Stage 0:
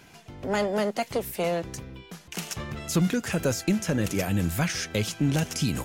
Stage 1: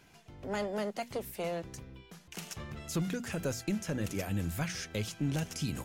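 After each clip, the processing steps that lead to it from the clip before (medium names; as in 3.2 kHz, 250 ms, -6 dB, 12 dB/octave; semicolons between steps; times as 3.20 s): bass shelf 90 Hz +5 dB; hum notches 60/120/180/240 Hz; trim -9 dB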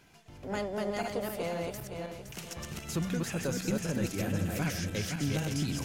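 backward echo that repeats 258 ms, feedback 56%, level -2 dB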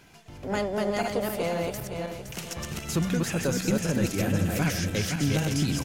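delay 336 ms -21 dB; trim +6 dB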